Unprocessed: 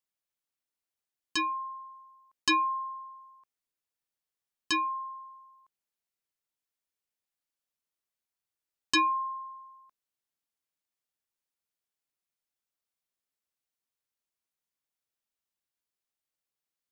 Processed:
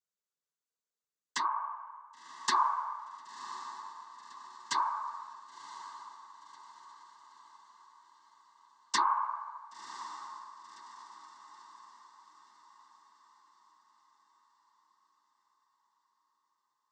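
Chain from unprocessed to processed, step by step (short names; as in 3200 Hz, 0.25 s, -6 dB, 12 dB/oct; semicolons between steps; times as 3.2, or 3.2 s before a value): fixed phaser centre 490 Hz, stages 8; noise vocoder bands 16; diffused feedback echo 1.049 s, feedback 50%, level -13 dB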